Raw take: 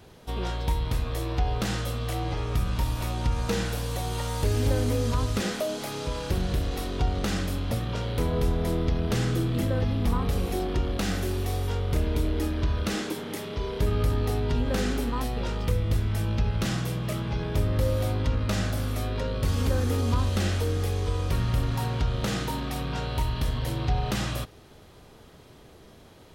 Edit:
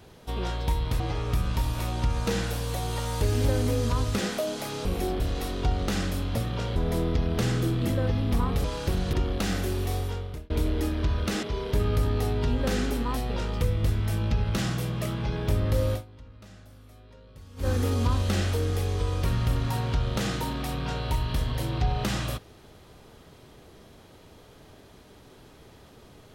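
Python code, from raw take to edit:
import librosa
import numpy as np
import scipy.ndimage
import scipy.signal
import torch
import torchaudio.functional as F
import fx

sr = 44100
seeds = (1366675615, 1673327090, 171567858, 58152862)

y = fx.edit(x, sr, fx.cut(start_s=1.0, length_s=1.22),
    fx.swap(start_s=6.07, length_s=0.49, other_s=10.37, other_length_s=0.35),
    fx.cut(start_s=8.12, length_s=0.37),
    fx.fade_out_span(start_s=11.54, length_s=0.55),
    fx.cut(start_s=13.02, length_s=0.48),
    fx.fade_down_up(start_s=18.0, length_s=1.74, db=-22.0, fade_s=0.13, curve='qua'), tone=tone)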